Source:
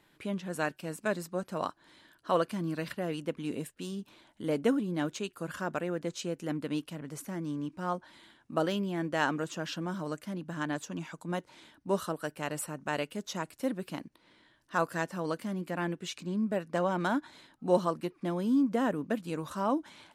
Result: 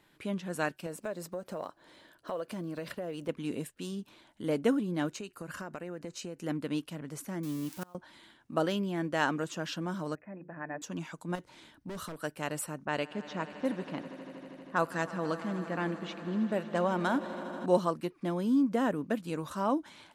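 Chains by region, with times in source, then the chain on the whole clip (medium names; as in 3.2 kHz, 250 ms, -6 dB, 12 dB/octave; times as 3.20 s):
0.86–3.29 s: block-companded coder 7-bit + peaking EQ 550 Hz +8.5 dB 1 oct + compression 4:1, threshold -35 dBFS
5.09–6.42 s: compression, threshold -36 dBFS + band-stop 3.4 kHz, Q 6.1
7.43–7.95 s: zero-crossing glitches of -32.5 dBFS + inverted gate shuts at -27 dBFS, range -27 dB
10.15–10.82 s: rippled Chebyshev low-pass 2.6 kHz, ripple 9 dB + de-hum 59.35 Hz, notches 9
11.35–12.21 s: overload inside the chain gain 35 dB + bass shelf 150 Hz +5.5 dB + compression, threshold -37 dBFS
12.85–17.66 s: level-controlled noise filter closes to 950 Hz, open at -26 dBFS + echo with a slow build-up 80 ms, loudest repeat 5, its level -18 dB
whole clip: none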